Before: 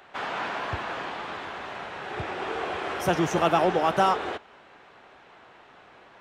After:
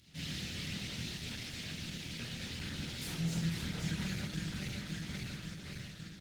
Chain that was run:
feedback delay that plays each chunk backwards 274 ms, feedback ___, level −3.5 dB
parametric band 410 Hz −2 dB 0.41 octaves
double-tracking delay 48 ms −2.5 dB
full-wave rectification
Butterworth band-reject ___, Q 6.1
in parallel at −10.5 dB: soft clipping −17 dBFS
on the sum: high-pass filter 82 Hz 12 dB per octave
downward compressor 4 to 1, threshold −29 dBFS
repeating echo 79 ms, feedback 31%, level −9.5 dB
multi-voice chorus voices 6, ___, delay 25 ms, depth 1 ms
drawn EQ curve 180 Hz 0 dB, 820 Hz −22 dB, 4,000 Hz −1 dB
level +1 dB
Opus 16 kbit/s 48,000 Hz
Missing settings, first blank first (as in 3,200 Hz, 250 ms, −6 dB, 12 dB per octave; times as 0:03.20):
73%, 1,100 Hz, 0.55 Hz